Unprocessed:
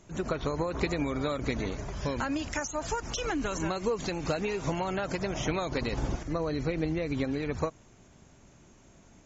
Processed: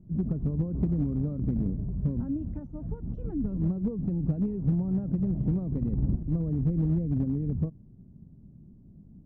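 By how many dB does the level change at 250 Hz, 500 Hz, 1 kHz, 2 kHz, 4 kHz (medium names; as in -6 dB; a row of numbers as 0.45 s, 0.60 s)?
+4.5 dB, -9.5 dB, under -20 dB, under -30 dB, under -35 dB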